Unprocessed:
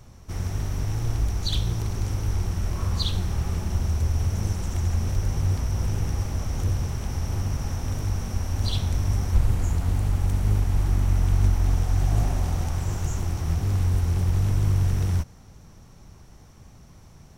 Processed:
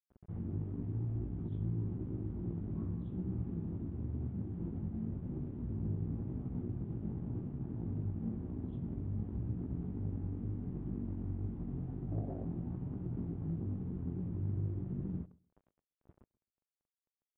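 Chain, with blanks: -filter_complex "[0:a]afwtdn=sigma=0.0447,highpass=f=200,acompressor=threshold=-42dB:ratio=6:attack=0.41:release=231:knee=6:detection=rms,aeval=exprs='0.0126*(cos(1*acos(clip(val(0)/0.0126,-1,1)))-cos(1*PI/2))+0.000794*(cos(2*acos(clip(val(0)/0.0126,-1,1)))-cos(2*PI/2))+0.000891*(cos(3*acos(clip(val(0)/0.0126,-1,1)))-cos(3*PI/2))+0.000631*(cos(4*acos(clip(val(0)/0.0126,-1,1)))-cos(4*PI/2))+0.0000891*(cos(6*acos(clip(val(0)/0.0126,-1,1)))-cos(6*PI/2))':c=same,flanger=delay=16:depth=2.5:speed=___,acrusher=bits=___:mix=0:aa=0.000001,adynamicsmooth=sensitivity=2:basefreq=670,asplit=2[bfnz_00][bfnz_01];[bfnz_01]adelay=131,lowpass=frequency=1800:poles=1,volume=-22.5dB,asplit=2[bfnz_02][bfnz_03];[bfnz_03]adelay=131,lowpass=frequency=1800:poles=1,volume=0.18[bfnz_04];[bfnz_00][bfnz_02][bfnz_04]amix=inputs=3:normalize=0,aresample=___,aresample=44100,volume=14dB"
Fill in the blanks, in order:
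0.93, 10, 8000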